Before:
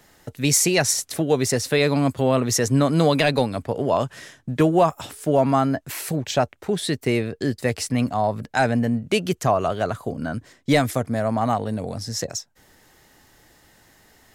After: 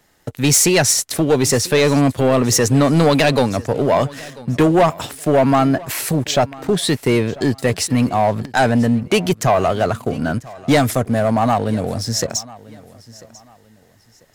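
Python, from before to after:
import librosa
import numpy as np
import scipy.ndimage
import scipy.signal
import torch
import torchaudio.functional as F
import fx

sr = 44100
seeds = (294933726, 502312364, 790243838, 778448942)

y = fx.leveller(x, sr, passes=2)
y = fx.echo_feedback(y, sr, ms=993, feedback_pct=30, wet_db=-21)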